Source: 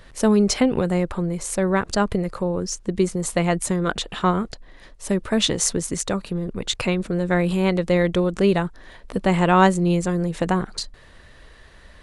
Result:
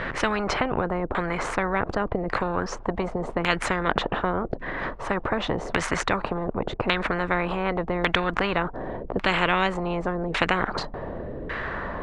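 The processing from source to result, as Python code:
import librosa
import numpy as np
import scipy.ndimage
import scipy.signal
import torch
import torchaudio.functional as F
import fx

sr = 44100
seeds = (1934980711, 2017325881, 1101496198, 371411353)

y = fx.filter_lfo_lowpass(x, sr, shape='saw_down', hz=0.87, low_hz=360.0, high_hz=2000.0, q=1.7)
y = fx.spectral_comp(y, sr, ratio=4.0)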